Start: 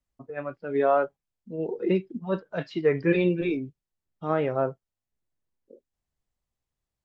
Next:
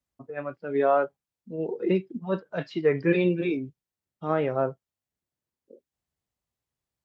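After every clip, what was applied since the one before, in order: high-pass 73 Hz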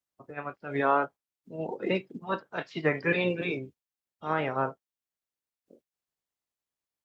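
spectral peaks clipped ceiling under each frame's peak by 16 dB; dynamic bell 850 Hz, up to +4 dB, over -37 dBFS, Q 0.73; trim -5.5 dB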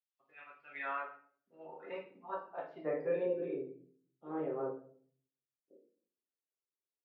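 band-pass sweep 2.9 kHz -> 400 Hz, 0.46–3.46 s; simulated room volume 55 m³, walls mixed, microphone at 0.84 m; trim -7.5 dB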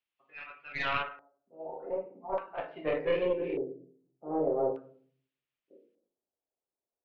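tracing distortion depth 0.15 ms; LFO low-pass square 0.42 Hz 700–2800 Hz; trim +4.5 dB

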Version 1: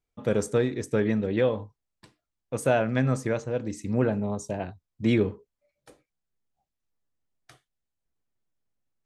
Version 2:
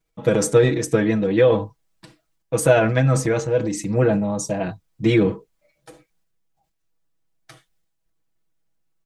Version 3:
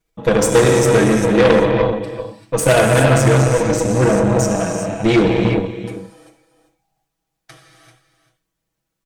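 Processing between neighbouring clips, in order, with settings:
comb 6.2 ms, depth 93%; transient shaper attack +2 dB, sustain +7 dB; trim +3.5 dB
delay 390 ms -12 dB; gated-style reverb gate 420 ms flat, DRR 0 dB; Chebyshev shaper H 5 -19 dB, 6 -12 dB, 8 -10 dB, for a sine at -0.5 dBFS; trim -1 dB

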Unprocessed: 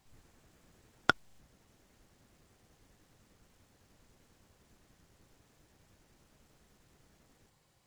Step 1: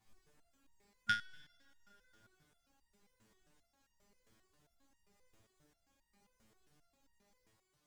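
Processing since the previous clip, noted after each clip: spectral replace 0.95–1.23 s, 220–1400 Hz; two-slope reverb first 0.21 s, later 3.3 s, from -20 dB, DRR 6.5 dB; resonator arpeggio 7.5 Hz 110–930 Hz; trim +4.5 dB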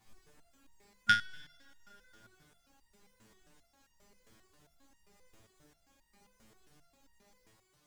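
hum notches 50/100/150/200 Hz; trim +8 dB

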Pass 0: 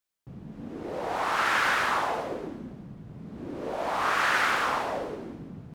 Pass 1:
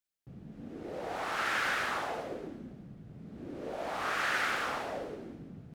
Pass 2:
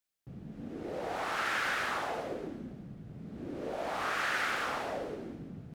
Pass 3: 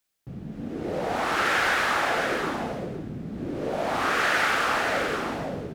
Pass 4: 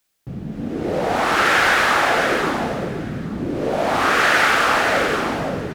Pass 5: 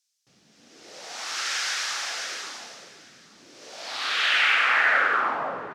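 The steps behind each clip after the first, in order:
peaking EQ 1 kHz -7 dB 0.41 oct; trim -5.5 dB
compression 1.5:1, threshold -37 dBFS, peak gain reduction 4 dB; trim +2.5 dB
delay 518 ms -5 dB; trim +8.5 dB
delay 833 ms -19 dB; trim +7.5 dB
band-pass sweep 5.7 kHz -> 1.1 kHz, 3.71–5.38 s; trim +3 dB

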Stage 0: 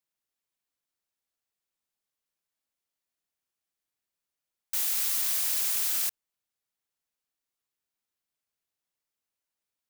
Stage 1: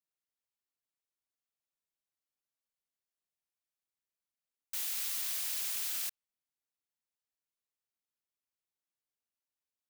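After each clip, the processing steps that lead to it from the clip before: dynamic bell 3 kHz, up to +4 dB, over -50 dBFS, Q 0.77; trim -8.5 dB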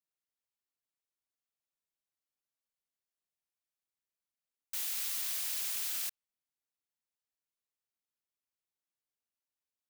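no audible change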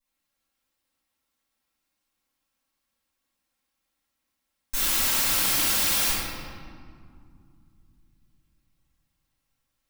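comb filter that takes the minimum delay 3.7 ms; reverberation RT60 2.3 s, pre-delay 3 ms, DRR -13.5 dB; trim +2 dB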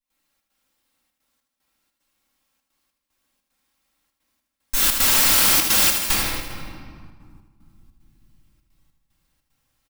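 trance gate ".xxx.xxxxxx.xx." 150 bpm -12 dB; on a send: feedback delay 78 ms, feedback 57%, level -7.5 dB; on the sum: trim +6.5 dB

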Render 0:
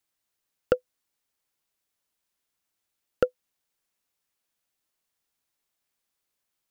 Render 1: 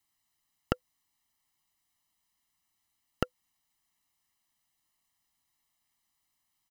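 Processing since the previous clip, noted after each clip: comb 1 ms, depth 86%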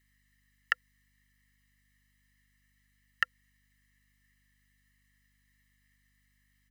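resonant high-pass 1.8 kHz, resonance Q 11; hum 50 Hz, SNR 28 dB

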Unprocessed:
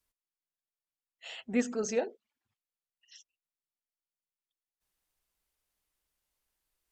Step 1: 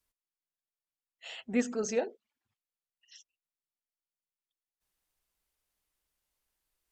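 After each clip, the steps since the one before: no audible change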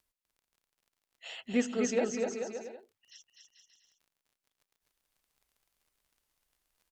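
crackle 20 per s -55 dBFS; on a send: bouncing-ball echo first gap 250 ms, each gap 0.75×, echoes 5

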